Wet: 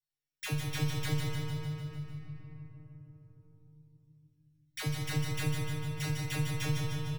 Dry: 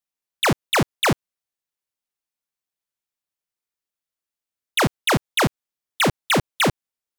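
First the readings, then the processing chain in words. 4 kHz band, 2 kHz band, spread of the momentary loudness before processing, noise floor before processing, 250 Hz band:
-15.5 dB, -17.0 dB, 4 LU, under -85 dBFS, -11.5 dB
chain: sample sorter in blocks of 8 samples; band shelf 820 Hz -9 dB; in parallel at -1 dB: limiter -18 dBFS, peak gain reduction 7.5 dB; on the sum: resonant low shelf 150 Hz +11 dB, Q 3; metallic resonator 150 Hz, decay 0.57 s, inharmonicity 0.002; on a send: feedback echo 0.15 s, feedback 52%, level -4.5 dB; on the sum: shoebox room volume 130 m³, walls hard, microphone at 0.32 m; three-band squash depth 40%; gain -8 dB

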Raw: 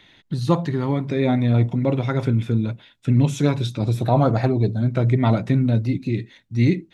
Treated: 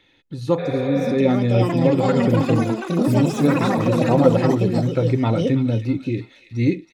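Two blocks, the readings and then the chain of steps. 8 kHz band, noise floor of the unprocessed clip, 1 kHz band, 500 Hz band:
n/a, -57 dBFS, +2.5 dB, +5.5 dB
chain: AGC; comb 2.3 ms, depth 37%; echoes that change speed 0.722 s, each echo +6 st, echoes 3; small resonant body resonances 280/510/2500 Hz, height 9 dB, ringing for 45 ms; spectral repair 0.61–1.1, 410–4600 Hz after; on a send: thin delay 0.323 s, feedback 43%, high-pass 1700 Hz, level -9 dB; on the sum: gain -8 dB

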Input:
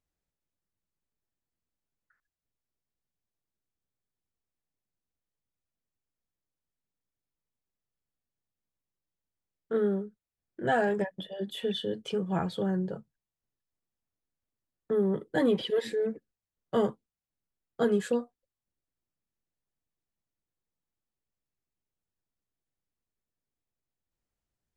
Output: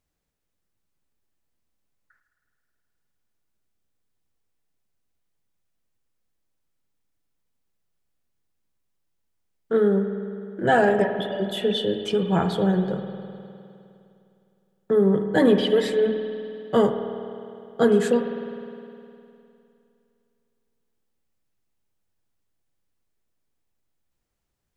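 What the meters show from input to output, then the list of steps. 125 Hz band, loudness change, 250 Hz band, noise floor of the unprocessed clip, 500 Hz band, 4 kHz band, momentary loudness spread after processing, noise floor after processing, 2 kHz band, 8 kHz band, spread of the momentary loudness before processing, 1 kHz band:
+8.5 dB, +7.5 dB, +8.5 dB, under -85 dBFS, +8.5 dB, +8.0 dB, 17 LU, -77 dBFS, +8.0 dB, n/a, 10 LU, +8.5 dB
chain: spring tank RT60 2.7 s, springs 51 ms, chirp 70 ms, DRR 6.5 dB; gain +7.5 dB

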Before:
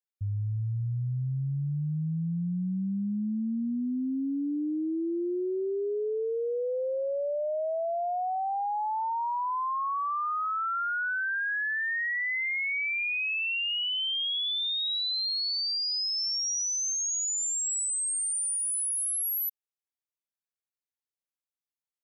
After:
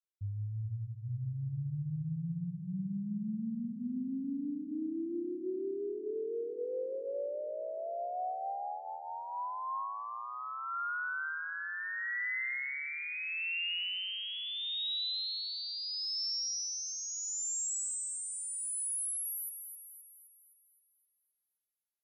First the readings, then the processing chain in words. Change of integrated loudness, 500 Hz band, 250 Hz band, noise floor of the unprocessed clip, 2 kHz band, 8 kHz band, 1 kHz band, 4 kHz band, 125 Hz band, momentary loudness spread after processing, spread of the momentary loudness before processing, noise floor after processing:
-7.5 dB, -7.5 dB, -7.0 dB, under -85 dBFS, -7.5 dB, -7.5 dB, -8.5 dB, -7.0 dB, -7.0 dB, 8 LU, 4 LU, -79 dBFS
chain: notches 60/120/180/240/300/360/420/480/540 Hz; rotary speaker horn 6.7 Hz, later 0.75 Hz, at 5.81; split-band echo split 1700 Hz, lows 0.425 s, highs 0.26 s, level -8 dB; gain -5.5 dB

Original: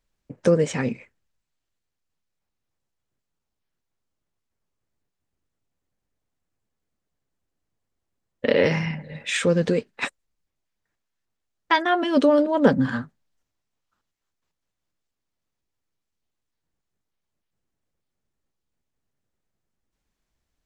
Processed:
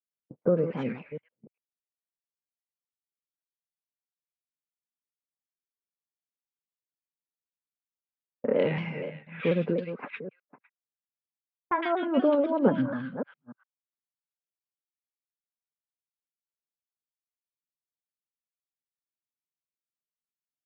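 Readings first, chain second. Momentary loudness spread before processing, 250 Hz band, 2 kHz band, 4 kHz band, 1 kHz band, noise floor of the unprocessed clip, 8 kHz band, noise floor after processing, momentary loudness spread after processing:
13 LU, -5.5 dB, -10.5 dB, -14.0 dB, -7.0 dB, -82 dBFS, under -35 dB, under -85 dBFS, 16 LU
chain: reverse delay 0.294 s, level -11 dB; HPF 130 Hz 24 dB/oct; gate -39 dBFS, range -22 dB; notch 1800 Hz, Q 6.9; low-pass opened by the level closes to 620 Hz, open at -18.5 dBFS; LPF 2700 Hz 24 dB/oct; bands offset in time lows, highs 0.11 s, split 1700 Hz; shaped vibrato saw down 4.1 Hz, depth 100 cents; gain -5.5 dB

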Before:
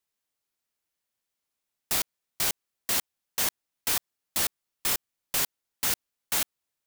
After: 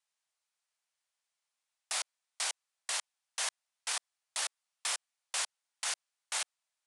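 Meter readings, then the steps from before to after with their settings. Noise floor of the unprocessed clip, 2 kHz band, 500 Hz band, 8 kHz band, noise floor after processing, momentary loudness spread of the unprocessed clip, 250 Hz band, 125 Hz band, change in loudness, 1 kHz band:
-85 dBFS, -4.5 dB, -10.0 dB, -5.5 dB, under -85 dBFS, 5 LU, under -30 dB, under -40 dB, -8.0 dB, -5.0 dB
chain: HPF 630 Hz 24 dB/oct; limiter -20 dBFS, peak gain reduction 7.5 dB; downsampling 22050 Hz

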